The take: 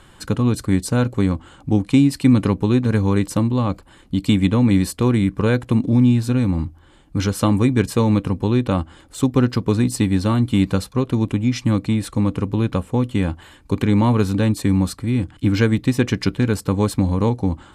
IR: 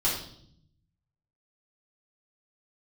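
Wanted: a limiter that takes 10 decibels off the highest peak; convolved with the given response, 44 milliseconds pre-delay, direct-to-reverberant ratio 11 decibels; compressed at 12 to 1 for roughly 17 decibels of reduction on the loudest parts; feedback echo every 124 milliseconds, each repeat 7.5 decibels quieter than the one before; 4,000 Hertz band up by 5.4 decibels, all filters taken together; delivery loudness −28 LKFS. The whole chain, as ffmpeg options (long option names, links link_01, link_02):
-filter_complex "[0:a]equalizer=frequency=4000:width_type=o:gain=6.5,acompressor=threshold=-28dB:ratio=12,alimiter=level_in=3.5dB:limit=-24dB:level=0:latency=1,volume=-3.5dB,aecho=1:1:124|248|372|496|620:0.422|0.177|0.0744|0.0312|0.0131,asplit=2[link_01][link_02];[1:a]atrim=start_sample=2205,adelay=44[link_03];[link_02][link_03]afir=irnorm=-1:irlink=0,volume=-20.5dB[link_04];[link_01][link_04]amix=inputs=2:normalize=0,volume=7.5dB"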